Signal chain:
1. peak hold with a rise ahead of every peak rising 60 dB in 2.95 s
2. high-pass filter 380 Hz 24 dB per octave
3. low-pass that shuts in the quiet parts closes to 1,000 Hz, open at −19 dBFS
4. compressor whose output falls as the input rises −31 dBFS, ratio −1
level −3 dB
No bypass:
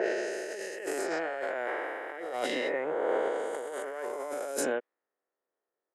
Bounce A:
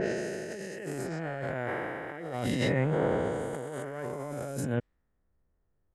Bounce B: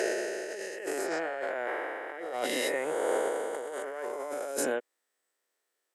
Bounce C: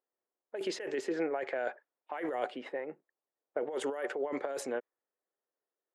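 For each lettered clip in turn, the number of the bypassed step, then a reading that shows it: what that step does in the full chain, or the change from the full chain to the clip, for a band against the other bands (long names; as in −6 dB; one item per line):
2, 250 Hz band +8.5 dB
3, 8 kHz band +3.0 dB
1, 250 Hz band +4.5 dB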